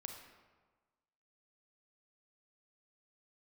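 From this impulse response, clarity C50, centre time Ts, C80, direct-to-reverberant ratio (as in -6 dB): 4.5 dB, 40 ms, 6.5 dB, 3.0 dB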